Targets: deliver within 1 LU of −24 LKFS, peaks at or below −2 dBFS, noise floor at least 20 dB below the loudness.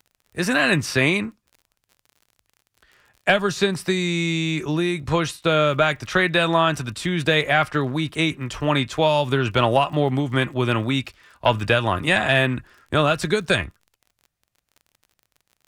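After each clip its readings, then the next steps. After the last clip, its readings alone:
crackle rate 33 per second; integrated loudness −21.0 LKFS; sample peak −4.5 dBFS; target loudness −24.0 LKFS
→ click removal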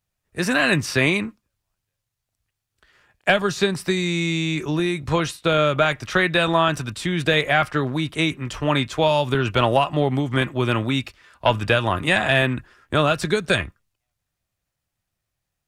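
crackle rate 0.064 per second; integrated loudness −21.0 LKFS; sample peak −4.5 dBFS; target loudness −24.0 LKFS
→ level −3 dB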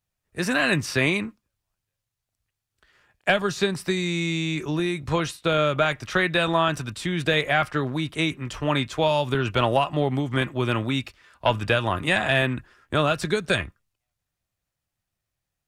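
integrated loudness −24.0 LKFS; sample peak −7.5 dBFS; background noise floor −84 dBFS

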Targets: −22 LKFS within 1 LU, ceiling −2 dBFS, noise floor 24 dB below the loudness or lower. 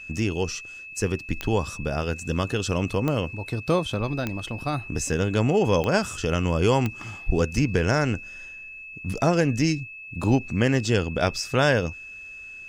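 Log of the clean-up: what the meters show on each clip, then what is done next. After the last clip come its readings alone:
number of clicks 5; interfering tone 2,600 Hz; level of the tone −38 dBFS; integrated loudness −25.0 LKFS; sample peak −6.5 dBFS; target loudness −22.0 LKFS
→ click removal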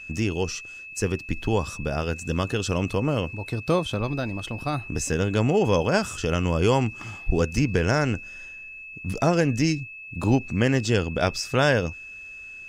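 number of clicks 0; interfering tone 2,600 Hz; level of the tone −38 dBFS
→ notch filter 2,600 Hz, Q 30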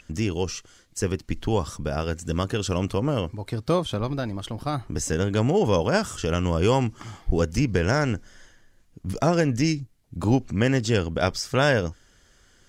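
interfering tone none found; integrated loudness −25.0 LKFS; sample peak −6.5 dBFS; target loudness −22.0 LKFS
→ level +3 dB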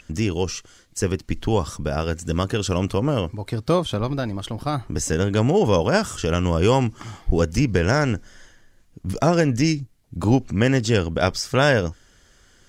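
integrated loudness −22.0 LKFS; sample peak −3.5 dBFS; background noise floor −55 dBFS

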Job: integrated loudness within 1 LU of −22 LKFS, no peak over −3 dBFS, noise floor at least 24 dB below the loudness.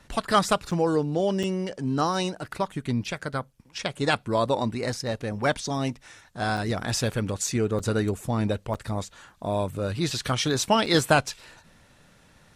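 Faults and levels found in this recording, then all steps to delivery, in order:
number of dropouts 6; longest dropout 5.5 ms; integrated loudness −26.5 LKFS; sample peak −6.5 dBFS; target loudness −22.0 LKFS
→ repair the gap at 0:00.71/0:01.43/0:06.57/0:07.79/0:08.74/0:10.86, 5.5 ms
level +4.5 dB
brickwall limiter −3 dBFS

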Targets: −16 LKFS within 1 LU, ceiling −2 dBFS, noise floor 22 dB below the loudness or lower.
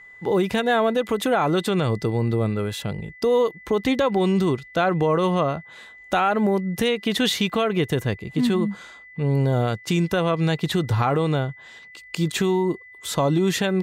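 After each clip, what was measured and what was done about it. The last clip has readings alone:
interfering tone 2,000 Hz; level of the tone −43 dBFS; integrated loudness −22.5 LKFS; sample peak −9.0 dBFS; target loudness −16.0 LKFS
→ notch filter 2,000 Hz, Q 30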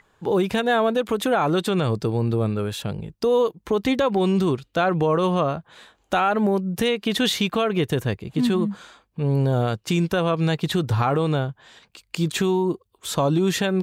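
interfering tone none found; integrated loudness −22.5 LKFS; sample peak −9.0 dBFS; target loudness −16.0 LKFS
→ level +6.5 dB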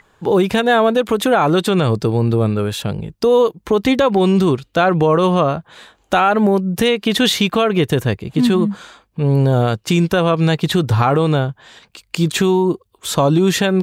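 integrated loudness −16.0 LKFS; sample peak −2.5 dBFS; background noise floor −60 dBFS

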